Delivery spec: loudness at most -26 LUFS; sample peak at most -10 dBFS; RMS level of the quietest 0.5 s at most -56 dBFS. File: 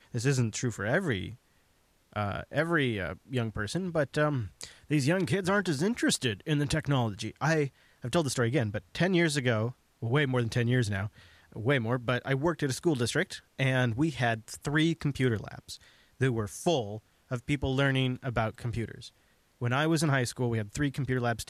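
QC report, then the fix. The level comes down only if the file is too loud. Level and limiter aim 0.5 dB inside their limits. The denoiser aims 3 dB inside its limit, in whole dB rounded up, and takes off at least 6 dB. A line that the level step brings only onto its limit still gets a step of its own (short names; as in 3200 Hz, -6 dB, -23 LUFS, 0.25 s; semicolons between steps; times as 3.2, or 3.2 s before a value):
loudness -29.5 LUFS: OK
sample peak -15.0 dBFS: OK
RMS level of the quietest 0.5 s -67 dBFS: OK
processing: none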